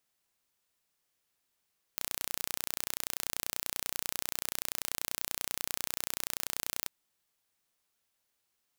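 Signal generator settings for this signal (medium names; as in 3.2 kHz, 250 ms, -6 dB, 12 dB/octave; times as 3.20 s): pulse train 30.3 per s, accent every 0, -6 dBFS 4.91 s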